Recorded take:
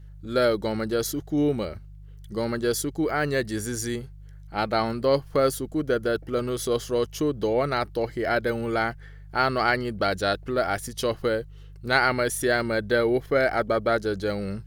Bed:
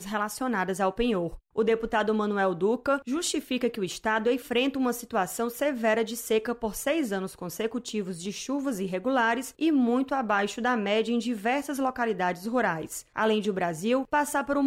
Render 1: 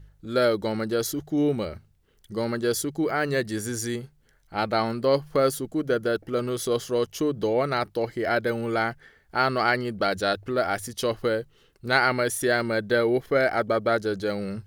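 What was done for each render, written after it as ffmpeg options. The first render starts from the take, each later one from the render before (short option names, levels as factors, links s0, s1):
-af "bandreject=f=50:t=h:w=4,bandreject=f=100:t=h:w=4,bandreject=f=150:t=h:w=4"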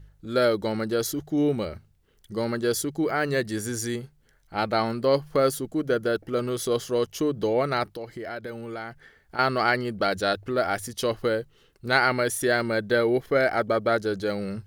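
-filter_complex "[0:a]asettb=1/sr,asplit=3[s0][s1][s2];[s0]atrim=end=7.954[s3];[s1]atrim=start=7.95:end=9.39,asetpts=PTS-STARTPTS,afade=t=in:d=0.004:c=qsin,afade=t=out:st=1.436:d=0.004:c=qsin,acompressor=threshold=0.0158:ratio=2.5:attack=3.2:release=140:knee=1:detection=peak[s4];[s2]atrim=start=9.386[s5];[s3][s4]acrossfade=d=0.004:c1=hsin:c2=qsin[s6];[s6][s5]acrossfade=d=0.004:c1=qsin:c2=hsin"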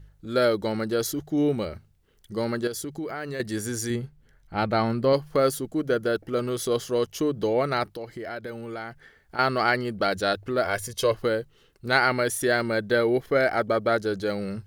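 -filter_complex "[0:a]asettb=1/sr,asplit=3[s0][s1][s2];[s0]atrim=end=2.674[s3];[s1]atrim=start=2.67:end=3.4,asetpts=PTS-STARTPTS,afade=t=in:d=0.004:c=qsin,afade=t=out:st=0.726:d=0.004:c=qsin,acompressor=threshold=0.0316:ratio=4:attack=3.2:release=140:knee=1:detection=peak[s4];[s2]atrim=start=3.396[s5];[s3][s4]acrossfade=d=0.004:c1=hsin:c2=qsin[s6];[s6][s5]acrossfade=d=0.004:c1=qsin:c2=hsin,asettb=1/sr,asplit=3[s7][s8][s9];[s7]atrim=end=3.904[s10];[s8]atrim=start=3.9:end=5.13,asetpts=PTS-STARTPTS,afade=t=in:d=0.004:c=qsin,afade=t=out:st=1.226:d=0.004:c=qsin,bass=f=250:g=6,treble=f=4000:g=-5[s11];[s9]atrim=start=5.126[s12];[s10][s11]acrossfade=d=0.004:c1=hsin:c2=qsin[s13];[s13][s12]acrossfade=d=0.004:c1=qsin:c2=hsin,asettb=1/sr,asplit=3[s14][s15][s16];[s14]atrim=end=10.654[s17];[s15]atrim=start=10.65:end=11.15,asetpts=PTS-STARTPTS,afade=t=in:d=0.004:c=qsin,afade=t=out:st=0.496:d=0.004:c=qsin,aecho=1:1:1.9:0.65,atrim=end_sample=22050[s18];[s16]atrim=start=11.146[s19];[s17][s18]acrossfade=d=0.004:c1=hsin:c2=qsin[s20];[s20][s19]acrossfade=d=0.004:c1=qsin:c2=hsin"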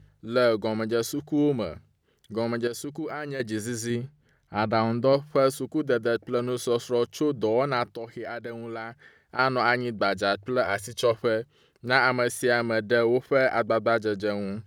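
-af "highpass=84,highshelf=f=8300:g=-8"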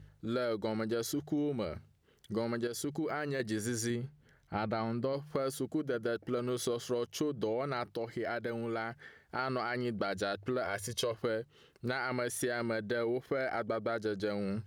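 -af "alimiter=limit=0.141:level=0:latency=1:release=20,acompressor=threshold=0.0282:ratio=6"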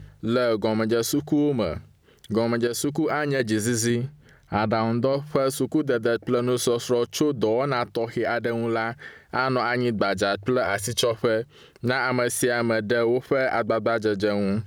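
-af "volume=3.76"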